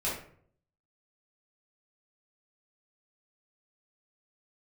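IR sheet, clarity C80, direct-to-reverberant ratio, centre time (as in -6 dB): 8.5 dB, -8.5 dB, 41 ms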